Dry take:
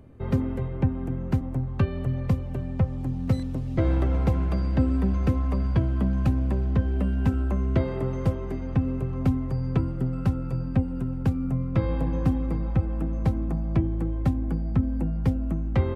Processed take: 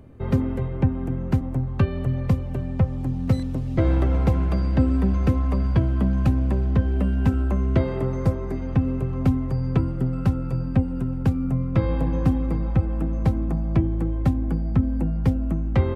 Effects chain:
0:08.05–0:08.56: parametric band 3,000 Hz −9 dB 0.33 octaves
level +3 dB

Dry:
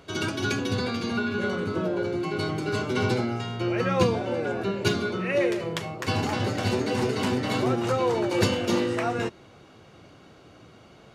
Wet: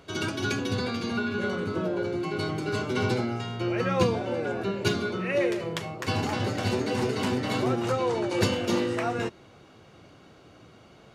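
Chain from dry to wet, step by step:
0:07.95–0:08.41: elliptic low-pass filter 11,000 Hz
level −1.5 dB

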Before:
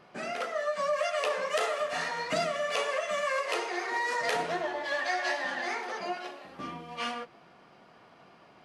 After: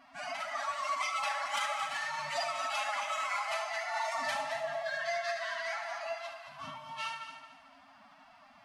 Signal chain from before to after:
in parallel at −1 dB: downward compressor, threshold −39 dBFS, peak gain reduction 13.5 dB
on the sum: phase-vocoder pitch shift with formants kept +11 semitones
brick-wall band-stop 280–560 Hz
echo machine with several playback heads 74 ms, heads first and third, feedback 44%, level −11 dB
level −5.5 dB

